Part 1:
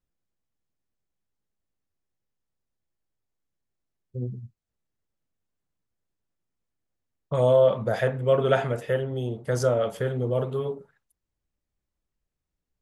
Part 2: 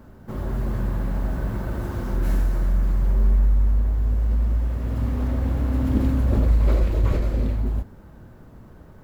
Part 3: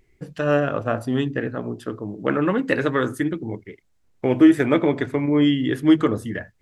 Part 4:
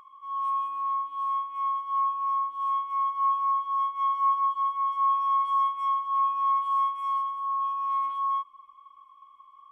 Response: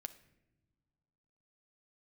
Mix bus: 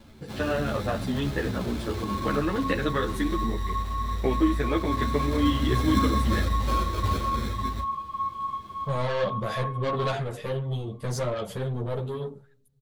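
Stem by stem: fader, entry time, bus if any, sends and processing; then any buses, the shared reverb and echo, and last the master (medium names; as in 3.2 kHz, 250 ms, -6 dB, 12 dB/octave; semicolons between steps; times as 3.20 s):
-1.0 dB, 1.55 s, send -9.5 dB, bass shelf 160 Hz +11 dB; saturation -21.5 dBFS, distortion -8 dB; treble shelf 6.1 kHz +6 dB
-1.0 dB, 0.00 s, no send, high-pass 56 Hz; sample-rate reducer 1.9 kHz, jitter 0%
+0.5 dB, 0.00 s, no send, compression, threshold -20 dBFS, peak gain reduction 11.5 dB
-5.0 dB, 1.70 s, no send, none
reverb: on, pre-delay 7 ms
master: peaking EQ 3.9 kHz +7.5 dB 0.52 oct; three-phase chorus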